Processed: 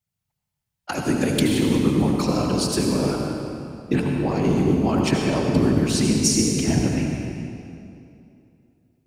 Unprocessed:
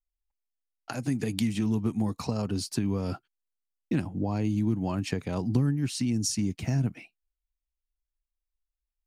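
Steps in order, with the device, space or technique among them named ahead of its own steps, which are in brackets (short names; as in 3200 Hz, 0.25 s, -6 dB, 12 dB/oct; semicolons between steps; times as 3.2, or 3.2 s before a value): whispering ghost (whisperiser; HPF 210 Hz 6 dB/oct; reverb RT60 2.7 s, pre-delay 68 ms, DRR 0.5 dB); gain +8.5 dB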